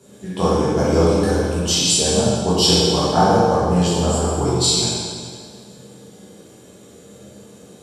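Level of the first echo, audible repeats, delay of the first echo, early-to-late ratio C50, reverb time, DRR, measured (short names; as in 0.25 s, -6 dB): none, none, none, -3.5 dB, 1.9 s, -10.0 dB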